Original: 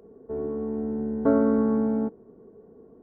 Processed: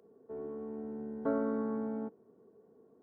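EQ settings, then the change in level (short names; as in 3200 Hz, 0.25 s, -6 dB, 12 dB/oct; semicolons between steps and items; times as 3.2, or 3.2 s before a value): HPF 89 Hz 24 dB/oct; low shelf 490 Hz -7 dB; -7.0 dB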